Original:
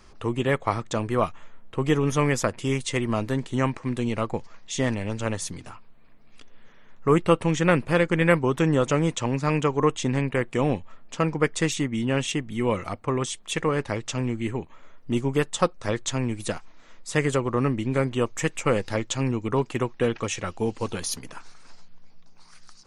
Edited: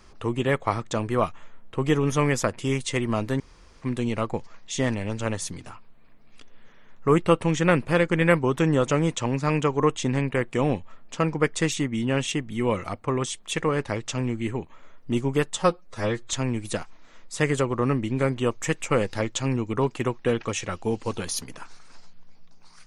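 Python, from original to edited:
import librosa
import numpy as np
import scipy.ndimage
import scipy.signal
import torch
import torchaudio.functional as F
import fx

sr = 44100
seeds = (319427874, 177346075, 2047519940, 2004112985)

y = fx.edit(x, sr, fx.room_tone_fill(start_s=3.4, length_s=0.42),
    fx.stretch_span(start_s=15.58, length_s=0.5, factor=1.5), tone=tone)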